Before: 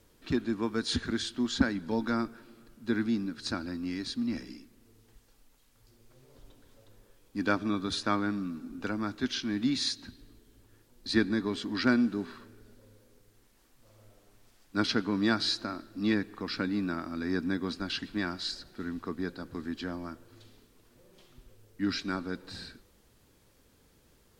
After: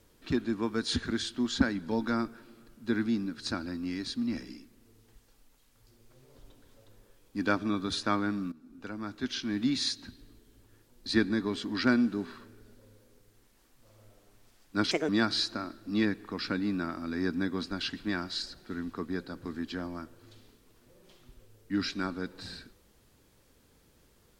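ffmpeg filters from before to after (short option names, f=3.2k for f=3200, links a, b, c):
-filter_complex "[0:a]asplit=4[a][b][c][d];[a]atrim=end=8.52,asetpts=PTS-STARTPTS,afade=t=out:st=8.516:d=0.004:c=hsin:silence=0.149624[e];[b]atrim=start=8.52:end=14.914,asetpts=PTS-STARTPTS,afade=t=in:d=1.04:silence=0.149624[f];[c]atrim=start=14.91:end=15.18,asetpts=PTS-STARTPTS,asetrate=66591,aresample=44100,atrim=end_sample=7885,asetpts=PTS-STARTPTS[g];[d]atrim=start=15.176[h];[e][f]concat=n=2:v=0:a=1[i];[i][g]acrossfade=d=0.004:c1=hsin:c2=hsin[j];[j][h]acrossfade=d=0.004:c1=hsin:c2=hsin"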